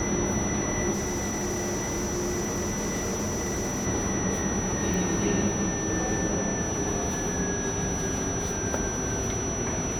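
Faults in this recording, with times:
whine 5.9 kHz -32 dBFS
0.92–3.87 s: clipped -25.5 dBFS
4.94 s: pop

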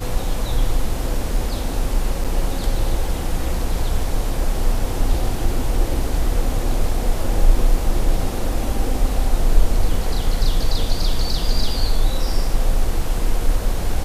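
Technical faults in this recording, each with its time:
2.24–2.25 s: dropout 6.9 ms

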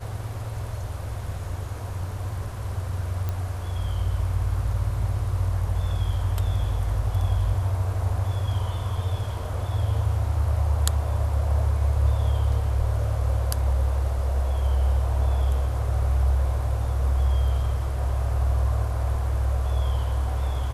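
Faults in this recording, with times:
3.29 s: pop -16 dBFS

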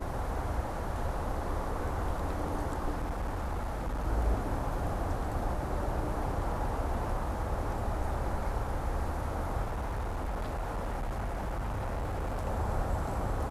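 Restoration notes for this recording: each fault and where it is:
2.90–4.06 s: clipped -29.5 dBFS
9.63–12.47 s: clipped -30.5 dBFS

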